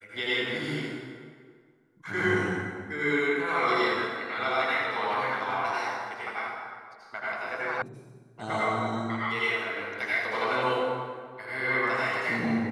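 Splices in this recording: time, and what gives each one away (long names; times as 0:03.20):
0:07.82: cut off before it has died away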